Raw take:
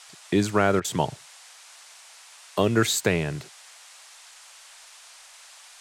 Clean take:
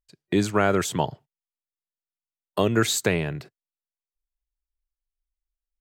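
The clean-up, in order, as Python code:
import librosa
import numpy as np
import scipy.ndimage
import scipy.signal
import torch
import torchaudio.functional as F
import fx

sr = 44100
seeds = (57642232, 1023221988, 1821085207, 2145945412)

y = fx.fix_interpolate(x, sr, at_s=(0.8,), length_ms=43.0)
y = fx.noise_reduce(y, sr, print_start_s=1.93, print_end_s=2.43, reduce_db=30.0)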